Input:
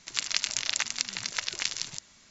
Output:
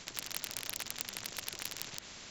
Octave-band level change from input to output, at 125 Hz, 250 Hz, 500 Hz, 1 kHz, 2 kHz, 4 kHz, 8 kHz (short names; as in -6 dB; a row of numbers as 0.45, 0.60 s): -2.5 dB, -2.0 dB, -1.0 dB, -6.5 dB, -10.5 dB, -11.0 dB, n/a